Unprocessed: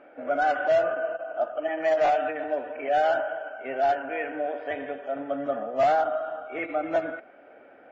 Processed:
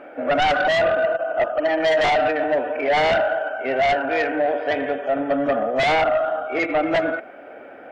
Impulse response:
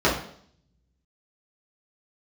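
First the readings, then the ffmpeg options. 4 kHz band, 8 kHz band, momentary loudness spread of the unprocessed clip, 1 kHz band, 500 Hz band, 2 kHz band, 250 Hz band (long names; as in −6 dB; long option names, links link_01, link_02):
+16.0 dB, can't be measured, 11 LU, +4.5 dB, +6.0 dB, +9.5 dB, +9.5 dB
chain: -af "aeval=exprs='0.188*sin(PI/2*2.24*val(0)/0.188)':channel_layout=same"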